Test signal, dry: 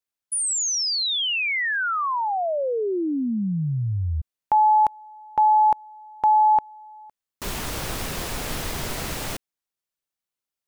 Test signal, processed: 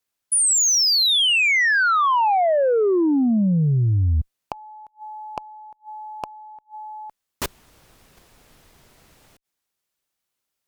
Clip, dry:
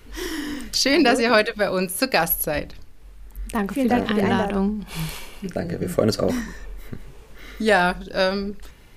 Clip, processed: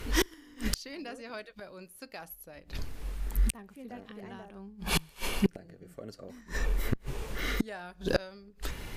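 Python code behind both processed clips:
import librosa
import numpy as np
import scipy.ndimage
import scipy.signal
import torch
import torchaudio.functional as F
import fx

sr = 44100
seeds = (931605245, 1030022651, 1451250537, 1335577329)

y = fx.gate_flip(x, sr, shuts_db=-20.0, range_db=-33)
y = fx.cheby_harmonics(y, sr, harmonics=(5,), levels_db=(-16,), full_scale_db=-13.0)
y = y * 10.0 ** (3.0 / 20.0)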